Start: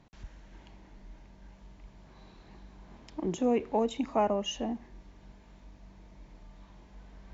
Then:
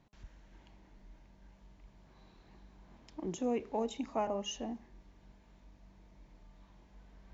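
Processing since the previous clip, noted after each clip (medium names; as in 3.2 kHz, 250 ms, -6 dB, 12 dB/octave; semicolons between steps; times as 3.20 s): de-hum 206.2 Hz, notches 6; dynamic bell 5.9 kHz, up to +5 dB, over -60 dBFS, Q 1.3; trim -6.5 dB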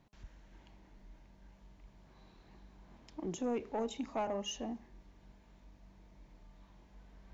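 saturation -27.5 dBFS, distortion -17 dB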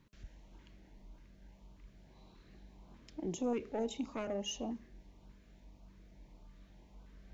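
LFO notch saw up 1.7 Hz 670–2000 Hz; trim +1 dB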